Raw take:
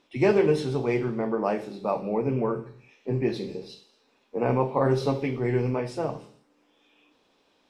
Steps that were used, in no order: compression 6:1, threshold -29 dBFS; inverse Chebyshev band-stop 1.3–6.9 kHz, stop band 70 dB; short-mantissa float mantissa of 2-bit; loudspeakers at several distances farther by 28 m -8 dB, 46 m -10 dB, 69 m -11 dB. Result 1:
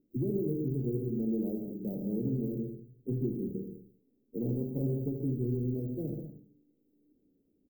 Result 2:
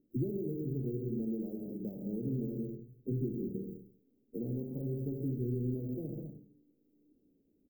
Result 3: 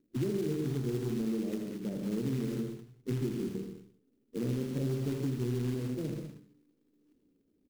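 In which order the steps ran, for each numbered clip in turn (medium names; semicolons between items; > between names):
short-mantissa float > inverse Chebyshev band-stop > compression > loudspeakers at several distances; loudspeakers at several distances > short-mantissa float > compression > inverse Chebyshev band-stop; inverse Chebyshev band-stop > short-mantissa float > loudspeakers at several distances > compression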